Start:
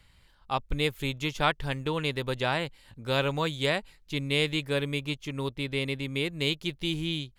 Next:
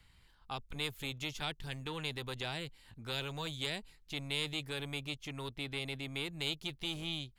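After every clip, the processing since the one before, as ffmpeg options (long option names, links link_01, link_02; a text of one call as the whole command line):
ffmpeg -i in.wav -filter_complex "[0:a]equalizer=frequency=570:width=7.2:gain=-9,acrossover=split=680|3000[link_01][link_02][link_03];[link_01]asoftclip=type=tanh:threshold=-37dB[link_04];[link_02]acompressor=threshold=-40dB:ratio=6[link_05];[link_04][link_05][link_03]amix=inputs=3:normalize=0,volume=-4dB" out.wav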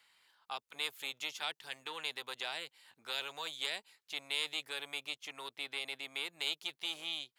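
ffmpeg -i in.wav -af "highpass=650,volume=1dB" out.wav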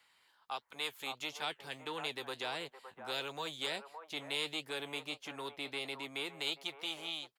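ffmpeg -i in.wav -filter_complex "[0:a]acrossover=split=380|1400[link_01][link_02][link_03];[link_01]dynaudnorm=framelen=260:gausssize=9:maxgain=9.5dB[link_04];[link_02]aecho=1:1:565:0.631[link_05];[link_03]flanger=delay=5.7:depth=8.4:regen=52:speed=1.5:shape=triangular[link_06];[link_04][link_05][link_06]amix=inputs=3:normalize=0,volume=2.5dB" out.wav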